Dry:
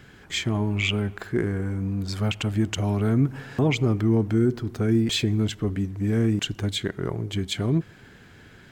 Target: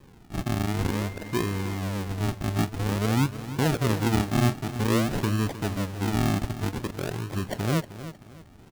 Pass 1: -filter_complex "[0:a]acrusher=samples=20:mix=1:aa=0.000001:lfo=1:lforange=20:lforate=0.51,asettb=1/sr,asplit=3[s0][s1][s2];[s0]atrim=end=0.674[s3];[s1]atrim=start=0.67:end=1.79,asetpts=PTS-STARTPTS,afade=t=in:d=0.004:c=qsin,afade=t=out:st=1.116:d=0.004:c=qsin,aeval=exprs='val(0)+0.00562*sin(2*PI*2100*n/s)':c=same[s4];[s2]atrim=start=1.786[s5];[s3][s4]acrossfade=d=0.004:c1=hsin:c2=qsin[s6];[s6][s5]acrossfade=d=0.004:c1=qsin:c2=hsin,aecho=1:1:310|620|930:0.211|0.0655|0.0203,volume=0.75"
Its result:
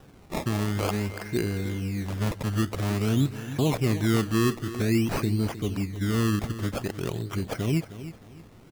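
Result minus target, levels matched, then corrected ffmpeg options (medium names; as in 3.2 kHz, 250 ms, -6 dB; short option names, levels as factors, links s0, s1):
decimation with a swept rate: distortion -9 dB
-filter_complex "[0:a]acrusher=samples=61:mix=1:aa=0.000001:lfo=1:lforange=61:lforate=0.51,asettb=1/sr,asplit=3[s0][s1][s2];[s0]atrim=end=0.674[s3];[s1]atrim=start=0.67:end=1.79,asetpts=PTS-STARTPTS,afade=t=in:d=0.004:c=qsin,afade=t=out:st=1.116:d=0.004:c=qsin,aeval=exprs='val(0)+0.00562*sin(2*PI*2100*n/s)':c=same[s4];[s2]atrim=start=1.786[s5];[s3][s4]acrossfade=d=0.004:c1=hsin:c2=qsin[s6];[s6][s5]acrossfade=d=0.004:c1=qsin:c2=hsin,aecho=1:1:310|620|930:0.211|0.0655|0.0203,volume=0.75"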